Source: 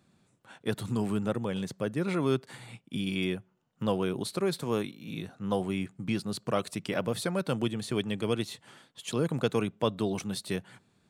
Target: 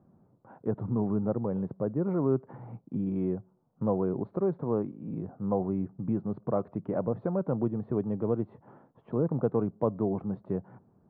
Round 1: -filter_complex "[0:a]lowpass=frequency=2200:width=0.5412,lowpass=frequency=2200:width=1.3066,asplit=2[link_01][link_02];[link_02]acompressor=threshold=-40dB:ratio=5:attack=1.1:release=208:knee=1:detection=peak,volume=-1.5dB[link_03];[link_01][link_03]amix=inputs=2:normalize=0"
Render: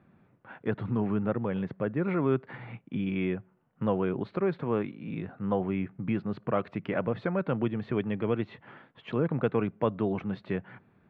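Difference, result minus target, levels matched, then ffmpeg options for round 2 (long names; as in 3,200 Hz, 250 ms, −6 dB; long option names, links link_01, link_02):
2,000 Hz band +17.0 dB
-filter_complex "[0:a]lowpass=frequency=990:width=0.5412,lowpass=frequency=990:width=1.3066,asplit=2[link_01][link_02];[link_02]acompressor=threshold=-40dB:ratio=5:attack=1.1:release=208:knee=1:detection=peak,volume=-1.5dB[link_03];[link_01][link_03]amix=inputs=2:normalize=0"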